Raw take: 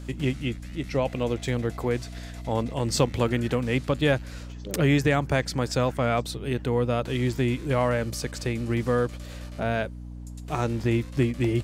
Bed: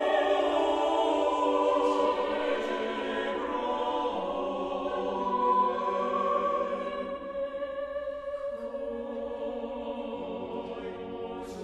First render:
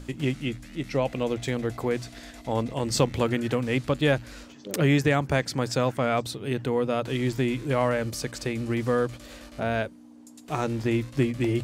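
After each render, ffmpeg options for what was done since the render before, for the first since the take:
-af "bandreject=f=60:t=h:w=6,bandreject=f=120:t=h:w=6,bandreject=f=180:t=h:w=6"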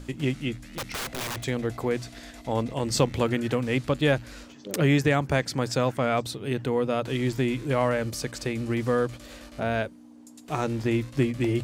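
-filter_complex "[0:a]asettb=1/sr,asplit=3[a][b][c];[a]atrim=end=0.584[d];[b]atrim=start=0.58:end=1.44,asetpts=PTS-STARTPTS,afade=t=in:d=0.004:c=qsin,afade=t=out:st=0.856:d=0.004:c=qsin,aeval=exprs='(mod(22.4*val(0)+1,2)-1)/22.4':c=same[e];[c]atrim=start=1.436[f];[d][e]acrossfade=d=0.004:c1=hsin:c2=qsin[g];[g][f]acrossfade=d=0.004:c1=qsin:c2=hsin"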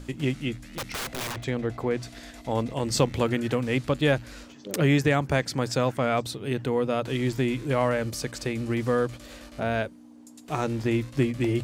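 -filter_complex "[0:a]asettb=1/sr,asplit=3[a][b][c];[a]atrim=end=1.324[d];[b]atrim=start=1.32:end=2.03,asetpts=PTS-STARTPTS,afade=t=in:d=0.004:c=qsin,afade=t=out:st=0.706:d=0.004:c=qsin,lowpass=f=3.3k:p=1[e];[c]atrim=start=2.026[f];[d][e]acrossfade=d=0.004:c1=hsin:c2=qsin[g];[g][f]acrossfade=d=0.004:c1=qsin:c2=hsin"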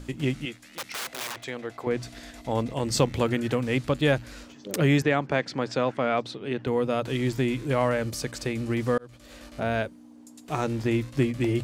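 -filter_complex "[0:a]asettb=1/sr,asplit=3[a][b][c];[a]atrim=end=0.454[d];[b]atrim=start=0.45:end=1.87,asetpts=PTS-STARTPTS,afade=t=in:d=0.004:c=qsin,afade=t=out:st=1.416:d=0.004:c=qsin,highpass=f=670:p=1[e];[c]atrim=start=1.866[f];[d][e]acrossfade=d=0.004:c1=hsin:c2=qsin[g];[g][f]acrossfade=d=0.004:c1=qsin:c2=hsin,asettb=1/sr,asplit=3[h][i][j];[h]atrim=end=5.024[k];[i]atrim=start=5.02:end=6.67,asetpts=PTS-STARTPTS,afade=t=in:d=0.004:c=qsin,afade=t=out:st=1.646:d=0.004:c=qsin,highpass=180,lowpass=4.2k[l];[j]atrim=start=6.666[m];[k][l]acrossfade=d=0.004:c1=hsin:c2=qsin[n];[n][m]acrossfade=d=0.004:c1=qsin:c2=hsin,asplit=2[o][p];[o]atrim=end=8.98,asetpts=PTS-STARTPTS,afade=t=out:st=8.976:d=0.004:c=hsin[q];[p]atrim=start=8.98,asetpts=PTS-STARTPTS,afade=t=in:d=0.49[r];[q][r]concat=n=2:v=0:a=1"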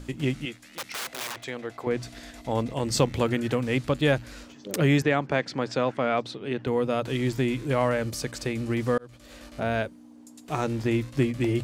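-af anull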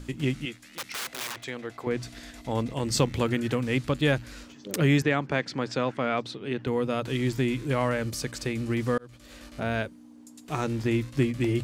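-af "equalizer=f=650:w=1.3:g=-4"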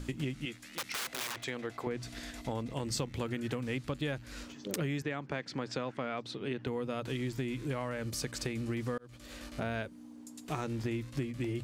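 -af "acompressor=threshold=-33dB:ratio=5"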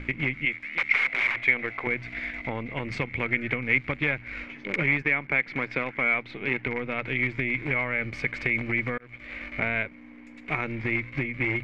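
-filter_complex "[0:a]asplit=2[a][b];[b]acrusher=bits=6:dc=4:mix=0:aa=0.000001,volume=-4dB[c];[a][c]amix=inputs=2:normalize=0,lowpass=f=2.2k:t=q:w=15"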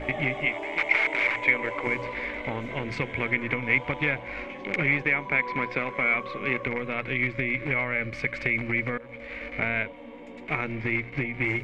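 -filter_complex "[1:a]volume=-9.5dB[a];[0:a][a]amix=inputs=2:normalize=0"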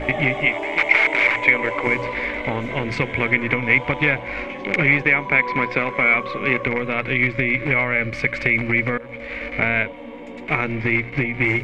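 -af "volume=7.5dB,alimiter=limit=-2dB:level=0:latency=1"

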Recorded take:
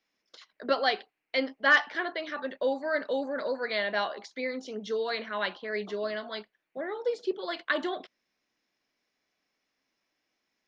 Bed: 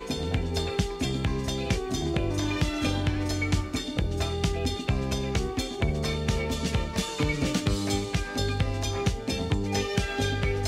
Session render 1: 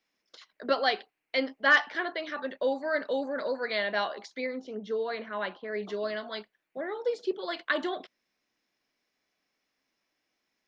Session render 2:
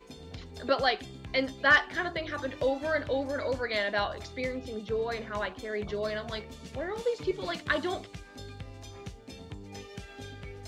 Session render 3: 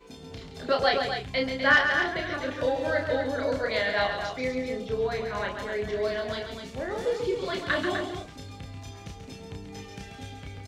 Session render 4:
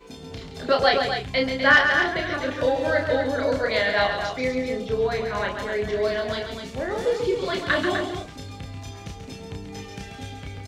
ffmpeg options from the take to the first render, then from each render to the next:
-filter_complex "[0:a]asettb=1/sr,asplit=3[a][b][c];[a]atrim=end=4.464[d];[b]atrim=start=4.46:end=5.83,asetpts=PTS-STARTPTS,afade=t=in:d=0.004:c=qsin,afade=t=out:st=1.366:d=0.004:c=qsin,lowpass=f=1.5k:p=1[e];[c]atrim=start=5.826[f];[d][e]acrossfade=d=0.004:c1=hsin:c2=qsin[g];[g][f]acrossfade=d=0.004:c1=qsin:c2=hsin"
-filter_complex "[1:a]volume=-16.5dB[a];[0:a][a]amix=inputs=2:normalize=0"
-filter_complex "[0:a]asplit=2[a][b];[b]adelay=31,volume=-3.5dB[c];[a][c]amix=inputs=2:normalize=0,aecho=1:1:137|250.7:0.447|0.447"
-af "volume=4.5dB,alimiter=limit=-3dB:level=0:latency=1"

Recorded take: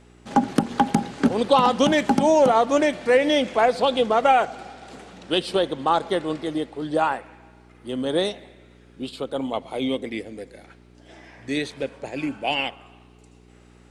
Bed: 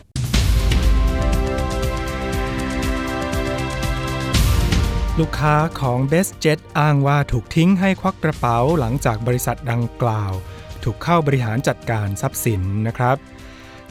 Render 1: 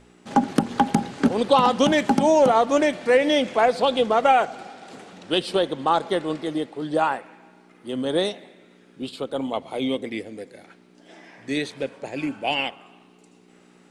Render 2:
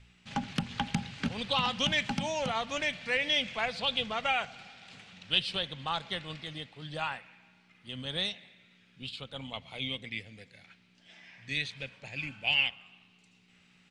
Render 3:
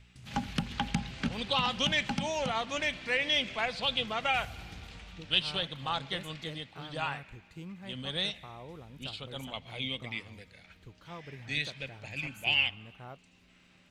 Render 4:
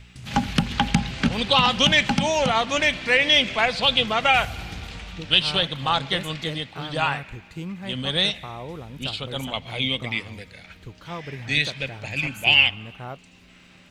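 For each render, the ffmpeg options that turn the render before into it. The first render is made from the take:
-af "bandreject=f=60:t=h:w=4,bandreject=f=120:t=h:w=4"
-af "firequalizer=gain_entry='entry(110,0);entry(320,-24);entry(550,-18);entry(2500,1);entry(11000,-18)':delay=0.05:min_phase=1"
-filter_complex "[1:a]volume=-30dB[a];[0:a][a]amix=inputs=2:normalize=0"
-af "volume=11dB,alimiter=limit=-3dB:level=0:latency=1"

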